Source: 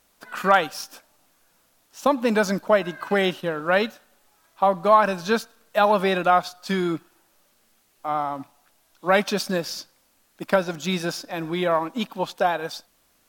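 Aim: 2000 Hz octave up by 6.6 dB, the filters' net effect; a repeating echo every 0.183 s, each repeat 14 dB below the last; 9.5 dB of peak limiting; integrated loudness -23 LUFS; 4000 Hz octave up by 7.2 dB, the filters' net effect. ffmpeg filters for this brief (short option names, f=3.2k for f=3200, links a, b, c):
-af "equalizer=f=2k:t=o:g=7.5,equalizer=f=4k:t=o:g=6.5,alimiter=limit=-10dB:level=0:latency=1,aecho=1:1:183|366:0.2|0.0399,volume=0.5dB"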